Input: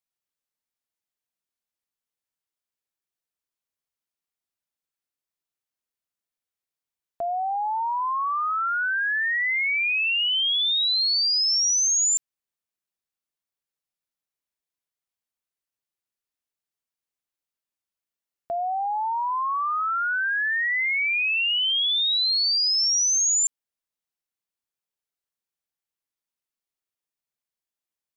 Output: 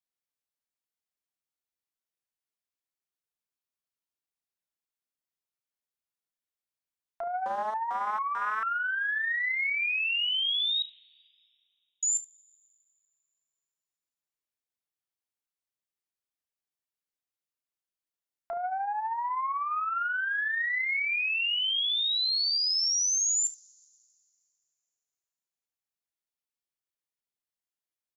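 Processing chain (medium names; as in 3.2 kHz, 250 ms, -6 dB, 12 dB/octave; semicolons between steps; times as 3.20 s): 10.82–12.03 s: steep low-pass 1.9 kHz 48 dB/octave; early reflections 33 ms -12.5 dB, 71 ms -17.5 dB; two-slope reverb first 0.23 s, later 2.5 s, from -18 dB, DRR 18.5 dB; 7.46–8.63 s: mobile phone buzz -44 dBFS; loudspeaker Doppler distortion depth 0.54 ms; trim -5.5 dB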